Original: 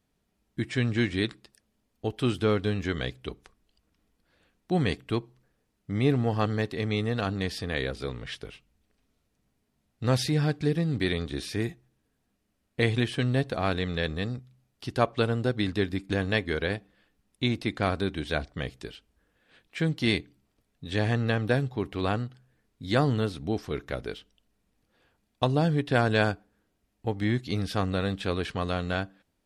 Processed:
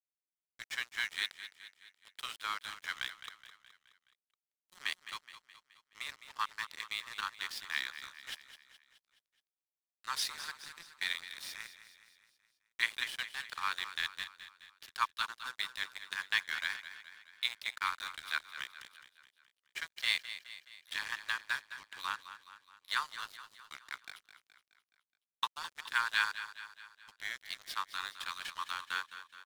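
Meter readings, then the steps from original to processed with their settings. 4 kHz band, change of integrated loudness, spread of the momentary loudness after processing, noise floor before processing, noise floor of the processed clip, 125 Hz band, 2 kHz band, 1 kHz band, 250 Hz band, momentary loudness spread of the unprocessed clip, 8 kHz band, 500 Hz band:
-2.0 dB, -9.5 dB, 18 LU, -76 dBFS, under -85 dBFS, under -40 dB, -2.5 dB, -6.0 dB, under -35 dB, 11 LU, -0.5 dB, -35.0 dB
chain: steep high-pass 920 Hz 96 dB/oct; notch 2600 Hz, Q 24; crossover distortion -41.5 dBFS; on a send: feedback echo 0.211 s, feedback 53%, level -12.5 dB

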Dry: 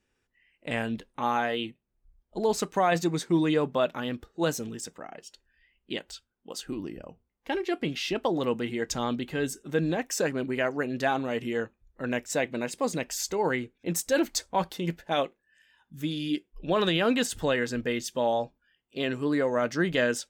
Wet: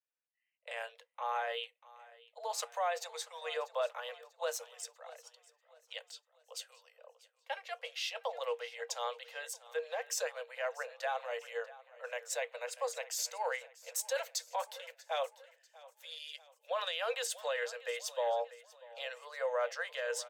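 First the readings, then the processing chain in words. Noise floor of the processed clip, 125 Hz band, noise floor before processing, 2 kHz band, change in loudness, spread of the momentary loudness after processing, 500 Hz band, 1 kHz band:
-79 dBFS, under -40 dB, -79 dBFS, -8.5 dB, -10.0 dB, 14 LU, -9.5 dB, -8.0 dB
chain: Chebyshev high-pass 470 Hz, order 10; limiter -21.5 dBFS, peak gain reduction 7.5 dB; feedback echo 0.642 s, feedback 50%, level -15.5 dB; three-band expander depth 40%; gain -5.5 dB

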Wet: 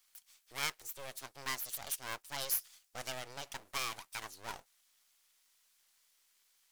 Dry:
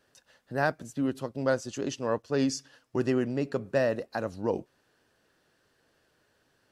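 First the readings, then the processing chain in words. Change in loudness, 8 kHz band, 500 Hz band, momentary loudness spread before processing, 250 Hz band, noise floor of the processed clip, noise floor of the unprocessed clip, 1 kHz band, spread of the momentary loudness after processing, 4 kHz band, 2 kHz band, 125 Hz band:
-9.5 dB, +2.0 dB, -22.0 dB, 7 LU, -28.5 dB, -73 dBFS, -71 dBFS, -8.0 dB, 13 LU, +2.0 dB, -6.5 dB, -20.5 dB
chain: full-wave rectifier; pre-emphasis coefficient 0.97; gain +7 dB

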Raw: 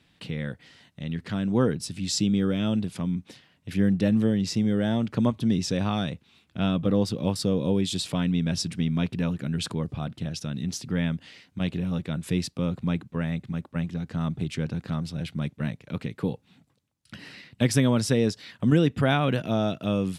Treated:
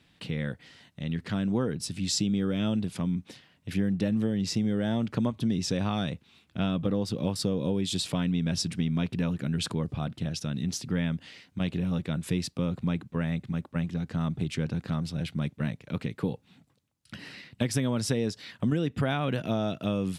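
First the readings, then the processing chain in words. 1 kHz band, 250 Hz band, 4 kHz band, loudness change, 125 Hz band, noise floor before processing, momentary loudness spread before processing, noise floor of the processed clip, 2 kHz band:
-4.0 dB, -3.5 dB, -1.5 dB, -3.0 dB, -3.0 dB, -65 dBFS, 11 LU, -65 dBFS, -3.5 dB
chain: compressor, threshold -23 dBFS, peak gain reduction 8.5 dB

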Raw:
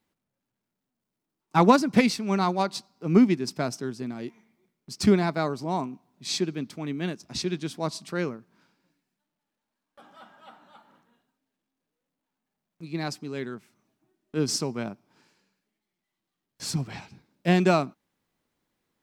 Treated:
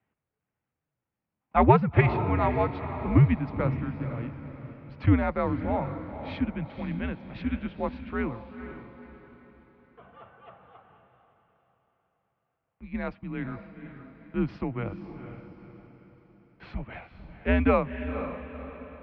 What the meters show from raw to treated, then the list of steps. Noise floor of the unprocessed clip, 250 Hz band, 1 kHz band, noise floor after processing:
-85 dBFS, -3.0 dB, -0.5 dB, under -85 dBFS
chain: mistuned SSB -110 Hz 190–2800 Hz; diffused feedback echo 0.488 s, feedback 43%, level -10 dB

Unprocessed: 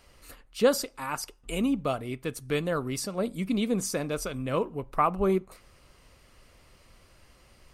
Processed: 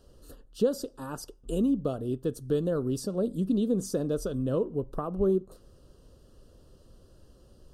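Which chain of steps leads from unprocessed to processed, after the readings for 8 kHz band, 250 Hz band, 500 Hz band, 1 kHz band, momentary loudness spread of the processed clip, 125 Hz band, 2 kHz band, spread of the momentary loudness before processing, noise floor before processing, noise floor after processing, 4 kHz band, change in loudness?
-7.5 dB, +1.5 dB, 0.0 dB, -12.0 dB, 8 LU, +1.5 dB, -15.0 dB, 9 LU, -59 dBFS, -58 dBFS, -9.0 dB, -0.5 dB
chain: compressor 3:1, threshold -27 dBFS, peak gain reduction 8.5 dB; Butterworth band-stop 2200 Hz, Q 1.7; resonant low shelf 630 Hz +9 dB, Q 1.5; gain -6 dB

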